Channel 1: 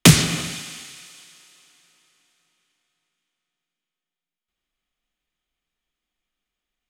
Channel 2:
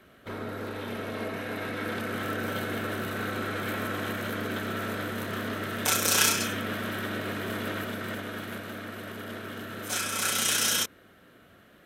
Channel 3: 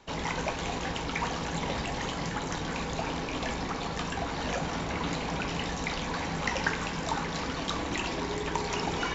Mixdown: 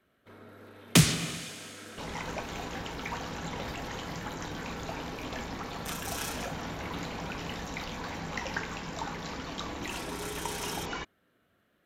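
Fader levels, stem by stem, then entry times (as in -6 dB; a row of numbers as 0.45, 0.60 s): -9.0, -15.0, -5.5 dB; 0.90, 0.00, 1.90 s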